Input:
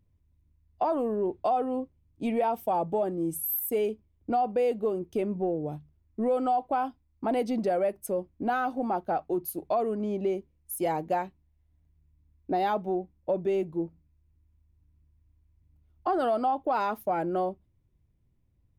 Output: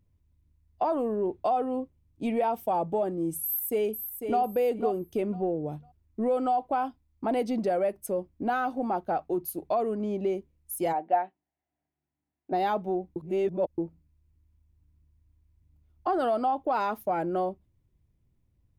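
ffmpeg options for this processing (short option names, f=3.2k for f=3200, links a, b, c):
-filter_complex "[0:a]asplit=2[a][b];[b]afade=t=in:st=3.43:d=0.01,afade=t=out:st=4.41:d=0.01,aecho=0:1:500|1000|1500:0.446684|0.0893367|0.0178673[c];[a][c]amix=inputs=2:normalize=0,asplit=3[d][e][f];[d]afade=t=out:st=10.92:d=0.02[g];[e]highpass=390,equalizer=f=480:t=q:w=4:g=-7,equalizer=f=740:t=q:w=4:g=8,equalizer=f=1.1k:t=q:w=4:g=-7,equalizer=f=2.4k:t=q:w=4:g=-5,lowpass=f=2.8k:w=0.5412,lowpass=f=2.8k:w=1.3066,afade=t=in:st=10.92:d=0.02,afade=t=out:st=12.51:d=0.02[h];[f]afade=t=in:st=12.51:d=0.02[i];[g][h][i]amix=inputs=3:normalize=0,asplit=3[j][k][l];[j]atrim=end=13.162[m];[k]atrim=start=13.158:end=13.782,asetpts=PTS-STARTPTS,areverse[n];[l]atrim=start=13.778[o];[m][n]acrossfade=d=0.004:c1=hsin:c2=hsin[p];[p][o]acrossfade=d=0.004:c1=hsin:c2=hsin"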